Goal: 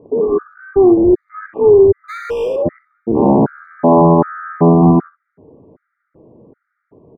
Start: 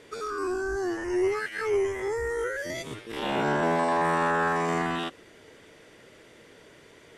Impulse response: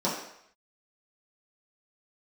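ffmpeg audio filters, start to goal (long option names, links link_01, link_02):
-filter_complex "[0:a]afwtdn=0.02,lowpass=frequency=1000:width=0.5412,lowpass=frequency=1000:width=1.3066,equalizer=frequency=170:width=0.5:gain=11.5,asplit=2[link_01][link_02];[link_02]acompressor=threshold=-35dB:ratio=6,volume=0dB[link_03];[link_01][link_03]amix=inputs=2:normalize=0,asplit=3[link_04][link_05][link_06];[link_04]afade=type=out:start_time=2.08:duration=0.02[link_07];[link_05]volume=29.5dB,asoftclip=hard,volume=-29.5dB,afade=type=in:start_time=2.08:duration=0.02,afade=type=out:start_time=2.55:duration=0.02[link_08];[link_06]afade=type=in:start_time=2.55:duration=0.02[link_09];[link_07][link_08][link_09]amix=inputs=3:normalize=0,asplit=2[link_10][link_11];[link_11]aecho=0:1:41|63:0.158|0.224[link_12];[link_10][link_12]amix=inputs=2:normalize=0,alimiter=level_in=14.5dB:limit=-1dB:release=50:level=0:latency=1,afftfilt=real='re*gt(sin(2*PI*1.3*pts/sr)*(1-2*mod(floor(b*sr/1024/1200),2)),0)':imag='im*gt(sin(2*PI*1.3*pts/sr)*(1-2*mod(floor(b*sr/1024/1200),2)),0)':win_size=1024:overlap=0.75,volume=-1dB"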